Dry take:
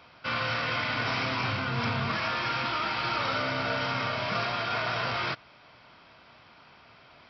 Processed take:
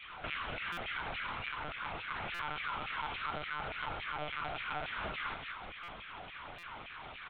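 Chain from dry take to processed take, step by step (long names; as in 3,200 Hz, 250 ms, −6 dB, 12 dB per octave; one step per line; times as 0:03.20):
repeating echo 177 ms, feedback 27%, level −8.5 dB
downward compressor 5 to 1, threshold −46 dBFS, peak gain reduction 18.5 dB
single-tap delay 71 ms −5.5 dB
auto-filter high-pass saw down 3.5 Hz 360–2,800 Hz
one-pitch LPC vocoder at 8 kHz 150 Hz
buffer that repeats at 0:00.72/0:02.34/0:05.83/0:06.58, samples 256, times 8
level +3.5 dB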